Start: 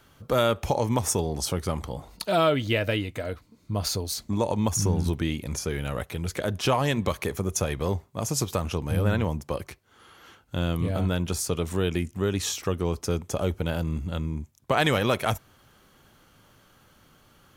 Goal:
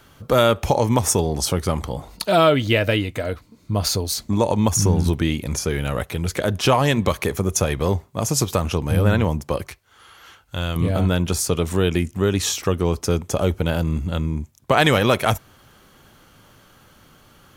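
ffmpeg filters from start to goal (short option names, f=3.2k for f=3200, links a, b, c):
-filter_complex "[0:a]asettb=1/sr,asplit=3[a][b][c];[a]atrim=end=9.684[d];[b]atrim=start=9.68:end=10.76,asetpts=PTS-STARTPTS,afade=t=in:d=0.004:c=qsin,afade=t=out:st=1.076:d=0.004:c=qsin,equalizer=f=250:t=o:w=2.4:g=-10[e];[c]atrim=start=10.756[f];[d][e]acrossfade=d=0.004:c1=hsin:c2=qsin[g];[g][f]acrossfade=d=0.004:c1=qsin:c2=hsin,volume=6.5dB"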